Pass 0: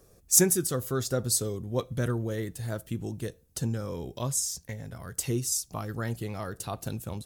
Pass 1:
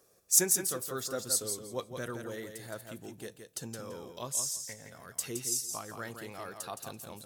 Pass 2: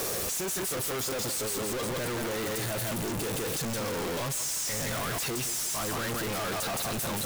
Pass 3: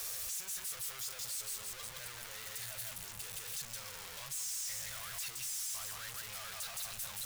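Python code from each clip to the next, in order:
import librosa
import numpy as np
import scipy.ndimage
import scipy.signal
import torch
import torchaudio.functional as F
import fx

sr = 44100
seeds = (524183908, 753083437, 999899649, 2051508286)

y1 = fx.highpass(x, sr, hz=580.0, slope=6)
y1 = fx.echo_feedback(y1, sr, ms=168, feedback_pct=18, wet_db=-7.0)
y1 = F.gain(torch.from_numpy(y1), -3.0).numpy()
y2 = np.sign(y1) * np.sqrt(np.mean(np.square(y1)))
y2 = F.gain(torch.from_numpy(y2), 4.5).numpy()
y3 = fx.tone_stack(y2, sr, knobs='10-0-10')
y3 = F.gain(torch.from_numpy(y3), -7.0).numpy()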